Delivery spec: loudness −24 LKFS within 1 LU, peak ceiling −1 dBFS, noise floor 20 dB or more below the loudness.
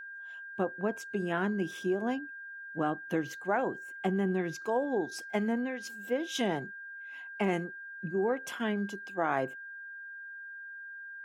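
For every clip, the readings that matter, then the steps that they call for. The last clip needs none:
interfering tone 1,600 Hz; level of the tone −42 dBFS; integrated loudness −34.0 LKFS; sample peak −16.0 dBFS; target loudness −24.0 LKFS
→ notch filter 1,600 Hz, Q 30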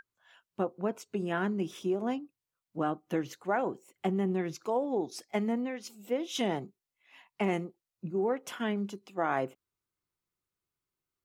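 interfering tone none found; integrated loudness −33.5 LKFS; sample peak −16.5 dBFS; target loudness −24.0 LKFS
→ level +9.5 dB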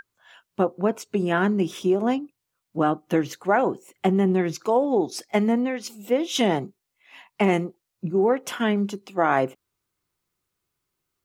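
integrated loudness −24.0 LKFS; sample peak −7.0 dBFS; background noise floor −81 dBFS

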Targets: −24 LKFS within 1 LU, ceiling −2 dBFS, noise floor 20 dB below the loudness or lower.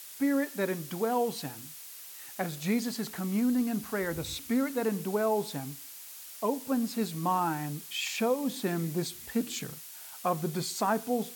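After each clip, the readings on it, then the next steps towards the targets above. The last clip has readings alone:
background noise floor −46 dBFS; target noise floor −52 dBFS; integrated loudness −31.5 LKFS; sample peak −16.5 dBFS; target loudness −24.0 LKFS
→ broadband denoise 6 dB, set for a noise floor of −46 dBFS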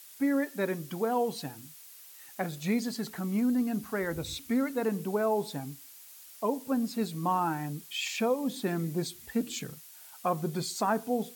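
background noise floor −51 dBFS; target noise floor −52 dBFS
→ broadband denoise 6 dB, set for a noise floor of −51 dBFS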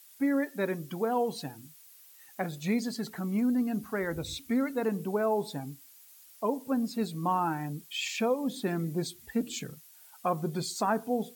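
background noise floor −55 dBFS; integrated loudness −31.5 LKFS; sample peak −16.5 dBFS; target loudness −24.0 LKFS
→ level +7.5 dB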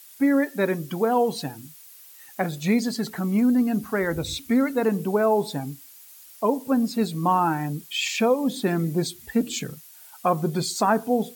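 integrated loudness −24.0 LKFS; sample peak −9.0 dBFS; background noise floor −48 dBFS

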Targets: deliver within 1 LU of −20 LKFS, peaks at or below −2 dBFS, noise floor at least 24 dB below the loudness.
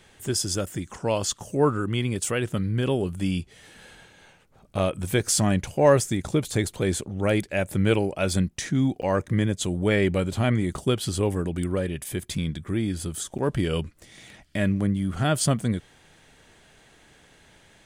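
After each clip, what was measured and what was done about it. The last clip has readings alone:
number of dropouts 2; longest dropout 8.0 ms; integrated loudness −25.5 LKFS; sample peak −5.5 dBFS; target loudness −20.0 LKFS
→ repair the gap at 0:09.02/0:13.38, 8 ms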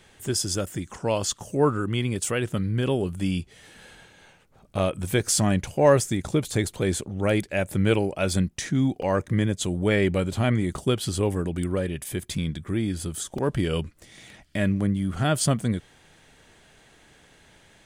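number of dropouts 0; integrated loudness −25.5 LKFS; sample peak −5.5 dBFS; target loudness −20.0 LKFS
→ level +5.5 dB
brickwall limiter −2 dBFS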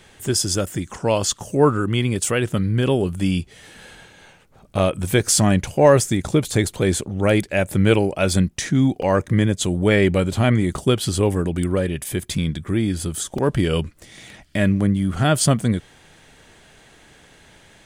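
integrated loudness −20.0 LKFS; sample peak −2.0 dBFS; background noise floor −51 dBFS

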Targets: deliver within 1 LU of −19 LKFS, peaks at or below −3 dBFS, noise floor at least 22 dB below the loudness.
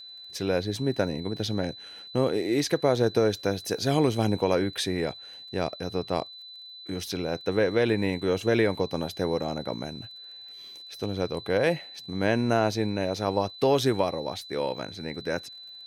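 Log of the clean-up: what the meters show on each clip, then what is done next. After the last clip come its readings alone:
crackle rate 26 per second; interfering tone 4,000 Hz; level of the tone −42 dBFS; integrated loudness −27.5 LKFS; sample peak −9.0 dBFS; target loudness −19.0 LKFS
→ click removal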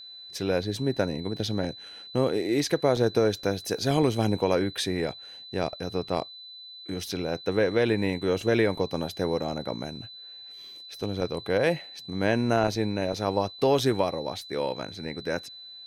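crackle rate 0.25 per second; interfering tone 4,000 Hz; level of the tone −42 dBFS
→ notch filter 4,000 Hz, Q 30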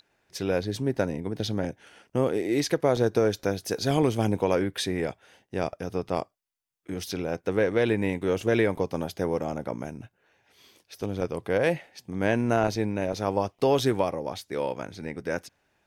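interfering tone none found; integrated loudness −27.5 LKFS; sample peak −9.5 dBFS; target loudness −19.0 LKFS
→ level +8.5 dB
brickwall limiter −3 dBFS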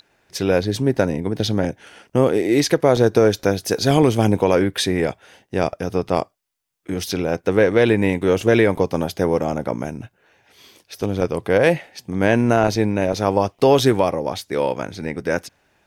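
integrated loudness −19.5 LKFS; sample peak −3.0 dBFS; background noise floor −65 dBFS

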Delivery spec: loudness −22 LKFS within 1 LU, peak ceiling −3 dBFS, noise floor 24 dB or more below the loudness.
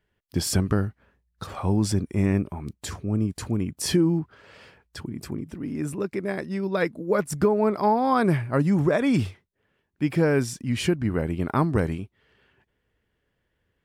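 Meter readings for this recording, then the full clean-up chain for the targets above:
integrated loudness −25.0 LKFS; sample peak −8.0 dBFS; target loudness −22.0 LKFS
→ level +3 dB

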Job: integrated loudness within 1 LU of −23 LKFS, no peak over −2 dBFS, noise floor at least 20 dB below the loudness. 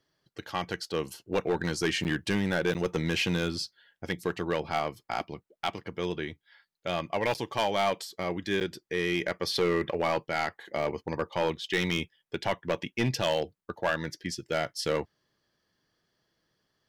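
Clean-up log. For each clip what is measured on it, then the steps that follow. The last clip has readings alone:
share of clipped samples 1.0%; peaks flattened at −20.0 dBFS; number of dropouts 4; longest dropout 9.0 ms; integrated loudness −31.0 LKFS; sample peak −20.0 dBFS; target loudness −23.0 LKFS
→ clipped peaks rebuilt −20 dBFS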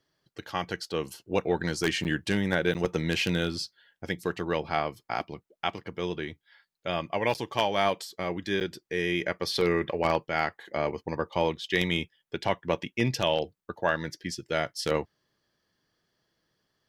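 share of clipped samples 0.0%; number of dropouts 4; longest dropout 9.0 ms
→ repair the gap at 0:02.04/0:02.74/0:07.34/0:08.60, 9 ms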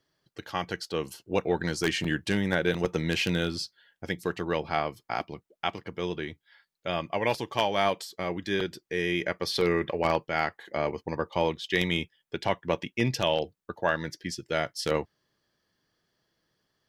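number of dropouts 0; integrated loudness −29.5 LKFS; sample peak −11.0 dBFS; target loudness −23.0 LKFS
→ level +6.5 dB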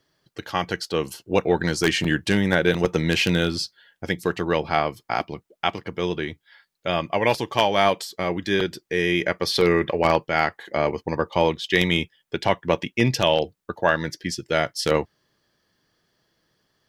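integrated loudness −23.0 LKFS; sample peak −4.5 dBFS; background noise floor −76 dBFS

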